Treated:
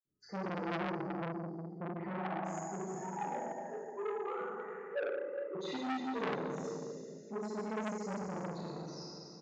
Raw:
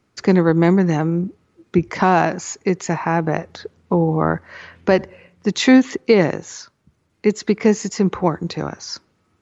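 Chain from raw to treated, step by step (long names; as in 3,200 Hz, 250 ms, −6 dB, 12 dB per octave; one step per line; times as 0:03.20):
0:02.90–0:05.50: three sine waves on the formant tracks
gate on every frequency bin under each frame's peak −10 dB strong
single-tap delay 93 ms −21 dB
convolution reverb RT60 2.7 s, pre-delay 47 ms
saturating transformer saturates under 1,700 Hz
level +2.5 dB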